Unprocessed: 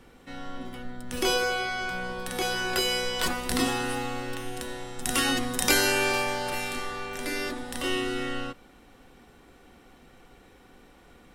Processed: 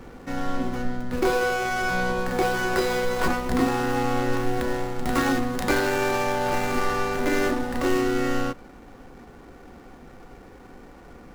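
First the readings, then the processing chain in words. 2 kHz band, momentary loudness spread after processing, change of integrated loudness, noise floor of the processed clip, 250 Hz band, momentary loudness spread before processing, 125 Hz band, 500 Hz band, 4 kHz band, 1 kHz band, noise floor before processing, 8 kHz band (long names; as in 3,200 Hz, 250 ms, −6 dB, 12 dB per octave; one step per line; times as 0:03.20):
+2.0 dB, 6 LU, +2.5 dB, −47 dBFS, +7.0 dB, 16 LU, +8.0 dB, +6.5 dB, −6.0 dB, +6.0 dB, −55 dBFS, −5.5 dB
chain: running median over 15 samples
speech leveller within 4 dB 0.5 s
level +7.5 dB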